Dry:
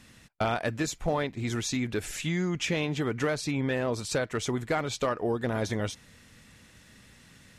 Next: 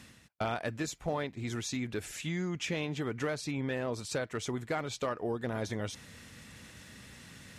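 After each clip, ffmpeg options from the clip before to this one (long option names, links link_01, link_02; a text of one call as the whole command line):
ffmpeg -i in.wav -af "areverse,acompressor=mode=upward:threshold=-35dB:ratio=2.5,areverse,highpass=49,volume=-5.5dB" out.wav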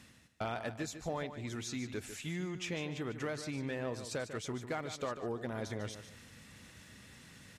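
ffmpeg -i in.wav -af "aecho=1:1:148|296|444:0.299|0.0836|0.0234,volume=-4.5dB" out.wav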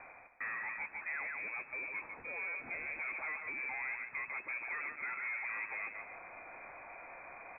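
ffmpeg -i in.wav -filter_complex "[0:a]asplit=2[link_01][link_02];[link_02]highpass=frequency=720:poles=1,volume=30dB,asoftclip=type=tanh:threshold=-26dB[link_03];[link_01][link_03]amix=inputs=2:normalize=0,lowpass=frequency=1300:poles=1,volume=-6dB,lowpass=frequency=2200:width_type=q:width=0.5098,lowpass=frequency=2200:width_type=q:width=0.6013,lowpass=frequency=2200:width_type=q:width=0.9,lowpass=frequency=2200:width_type=q:width=2.563,afreqshift=-2600,volume=-6.5dB" out.wav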